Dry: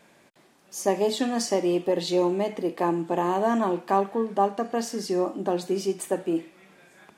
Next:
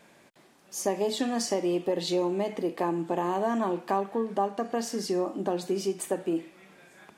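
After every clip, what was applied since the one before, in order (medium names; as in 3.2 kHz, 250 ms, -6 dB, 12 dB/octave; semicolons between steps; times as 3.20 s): compression 2:1, threshold -26 dBFS, peak gain reduction 6 dB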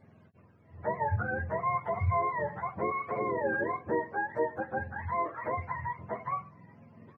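spectrum inverted on a logarithmic axis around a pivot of 610 Hz; echo from a far wall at 140 m, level -29 dB; trim -1.5 dB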